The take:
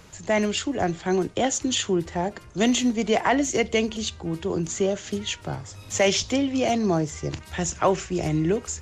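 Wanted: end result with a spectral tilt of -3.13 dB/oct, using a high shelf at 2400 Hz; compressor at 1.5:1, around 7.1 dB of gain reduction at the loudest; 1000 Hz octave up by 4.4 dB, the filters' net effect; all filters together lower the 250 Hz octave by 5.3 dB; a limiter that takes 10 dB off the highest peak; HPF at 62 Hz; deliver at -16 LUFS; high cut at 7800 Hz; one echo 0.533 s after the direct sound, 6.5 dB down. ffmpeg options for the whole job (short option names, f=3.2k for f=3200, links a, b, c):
-af "highpass=62,lowpass=7.8k,equalizer=f=250:t=o:g=-7.5,equalizer=f=1k:t=o:g=6,highshelf=f=2.4k:g=5.5,acompressor=threshold=-33dB:ratio=1.5,alimiter=limit=-21.5dB:level=0:latency=1,aecho=1:1:533:0.473,volume=15dB"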